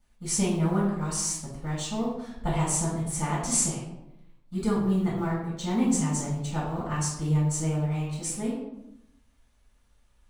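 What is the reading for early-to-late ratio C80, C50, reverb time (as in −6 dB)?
5.5 dB, 2.5 dB, 0.85 s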